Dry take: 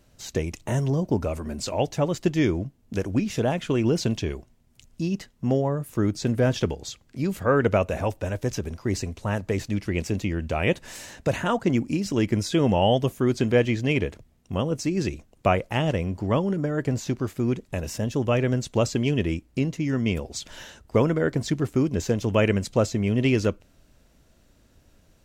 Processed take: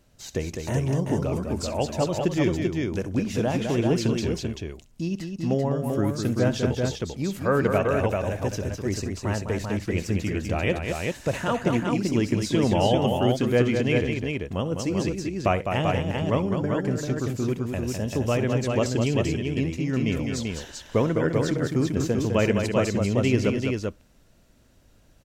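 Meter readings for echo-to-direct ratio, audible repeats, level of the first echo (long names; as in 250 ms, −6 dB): −1.5 dB, 3, −16.5 dB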